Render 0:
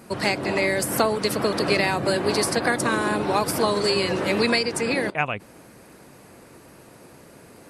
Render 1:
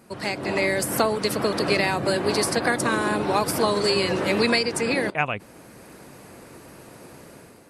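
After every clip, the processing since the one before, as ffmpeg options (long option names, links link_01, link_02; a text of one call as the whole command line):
ffmpeg -i in.wav -af "dynaudnorm=framelen=120:gausssize=7:maxgain=9.5dB,volume=-6.5dB" out.wav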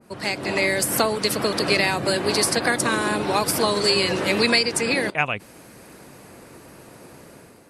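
ffmpeg -i in.wav -af "adynamicequalizer=threshold=0.0126:dfrequency=1900:dqfactor=0.7:tfrequency=1900:tqfactor=0.7:attack=5:release=100:ratio=0.375:range=2.5:mode=boostabove:tftype=highshelf" out.wav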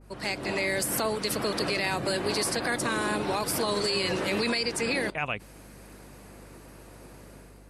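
ffmpeg -i in.wav -af "aeval=exprs='val(0)+0.00501*(sin(2*PI*50*n/s)+sin(2*PI*2*50*n/s)/2+sin(2*PI*3*50*n/s)/3+sin(2*PI*4*50*n/s)/4+sin(2*PI*5*50*n/s)/5)':channel_layout=same,alimiter=limit=-13.5dB:level=0:latency=1:release=10,volume=-5dB" out.wav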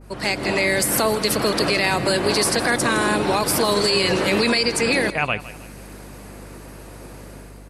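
ffmpeg -i in.wav -af "aecho=1:1:160|320|480:0.158|0.0586|0.0217,volume=8.5dB" out.wav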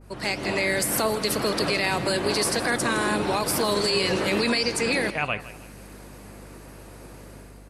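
ffmpeg -i in.wav -af "flanger=delay=9.2:depth=8.4:regen=86:speed=1.9:shape=sinusoidal" out.wav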